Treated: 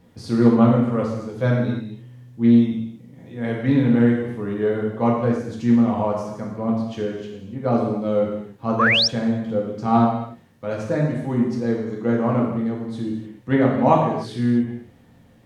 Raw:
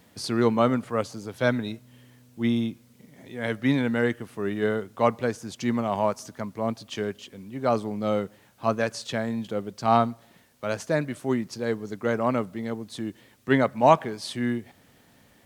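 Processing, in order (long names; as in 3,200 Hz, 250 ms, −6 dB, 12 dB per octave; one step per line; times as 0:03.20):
spectral tilt −2.5 dB per octave
reverb whose tail is shaped and stops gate 330 ms falling, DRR −3 dB
sound drawn into the spectrogram rise, 0:08.79–0:09.08, 1,000–5,900 Hz −13 dBFS
highs frequency-modulated by the lows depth 0.11 ms
level −4 dB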